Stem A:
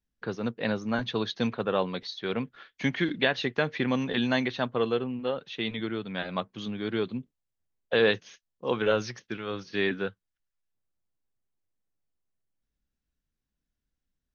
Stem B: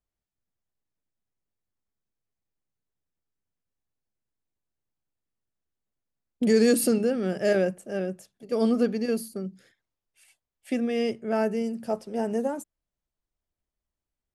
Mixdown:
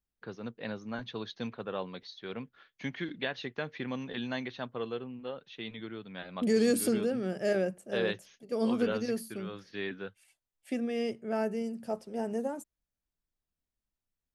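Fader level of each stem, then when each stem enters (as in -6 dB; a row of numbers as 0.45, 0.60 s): -9.5, -6.0 dB; 0.00, 0.00 s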